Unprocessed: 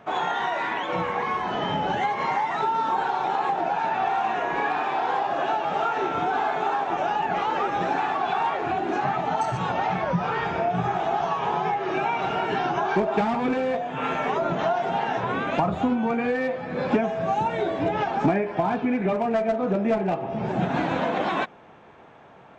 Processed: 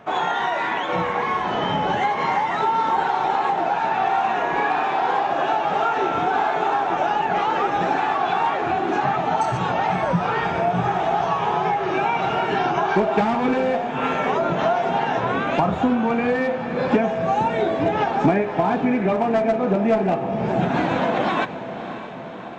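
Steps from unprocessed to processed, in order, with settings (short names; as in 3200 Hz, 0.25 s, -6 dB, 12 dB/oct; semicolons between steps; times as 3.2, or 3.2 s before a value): diffused feedback echo 0.596 s, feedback 65%, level -12.5 dB; gain +3.5 dB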